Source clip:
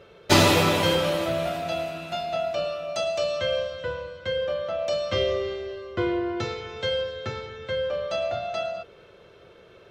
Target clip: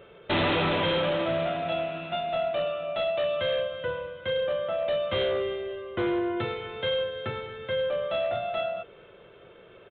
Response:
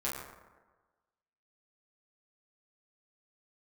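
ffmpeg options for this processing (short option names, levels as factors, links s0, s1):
-af "equalizer=f=76:w=3:g=-9.5,aresample=8000,asoftclip=type=hard:threshold=0.075,aresample=44100"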